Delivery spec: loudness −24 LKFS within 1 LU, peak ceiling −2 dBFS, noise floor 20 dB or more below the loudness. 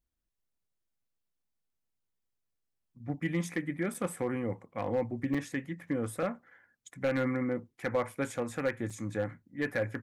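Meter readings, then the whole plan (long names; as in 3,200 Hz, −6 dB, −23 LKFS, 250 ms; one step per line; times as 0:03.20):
share of clipped samples 0.3%; peaks flattened at −22.0 dBFS; number of dropouts 3; longest dropout 5.1 ms; integrated loudness −34.0 LKFS; sample peak −22.0 dBFS; target loudness −24.0 LKFS
→ clipped peaks rebuilt −22 dBFS
repair the gap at 0:03.94/0:05.34/0:08.90, 5.1 ms
level +10 dB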